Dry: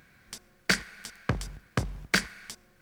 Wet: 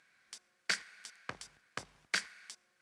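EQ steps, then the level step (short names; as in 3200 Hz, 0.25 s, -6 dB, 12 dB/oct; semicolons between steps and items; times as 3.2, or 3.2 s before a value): HPF 1200 Hz 6 dB/oct; LPF 10000 Hz 24 dB/oct; -6.5 dB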